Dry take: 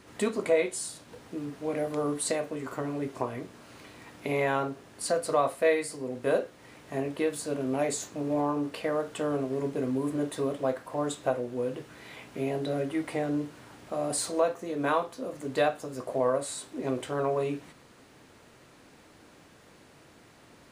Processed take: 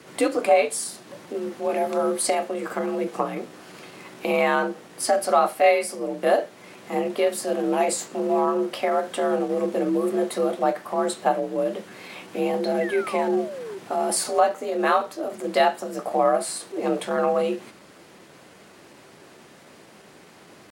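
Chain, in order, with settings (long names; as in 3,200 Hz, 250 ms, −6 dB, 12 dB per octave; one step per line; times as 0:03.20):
sound drawn into the spectrogram fall, 0:12.81–0:13.79, 300–1,900 Hz −41 dBFS
frequency shifter +52 Hz
pitch shifter +1 semitone
level +6.5 dB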